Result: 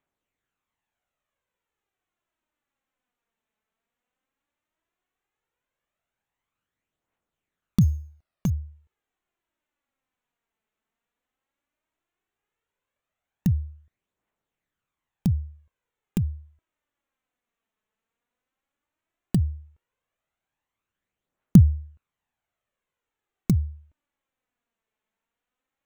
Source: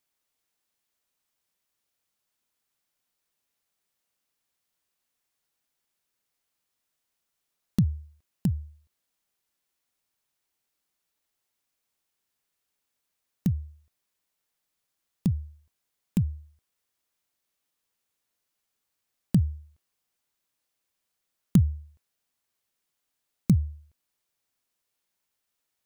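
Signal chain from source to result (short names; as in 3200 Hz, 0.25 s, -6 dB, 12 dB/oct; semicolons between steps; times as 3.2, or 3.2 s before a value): Wiener smoothing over 9 samples; 7.81–8.5 sample-rate reducer 6500 Hz, jitter 0%; phaser 0.14 Hz, delay 4.7 ms, feedback 45%; gain +2 dB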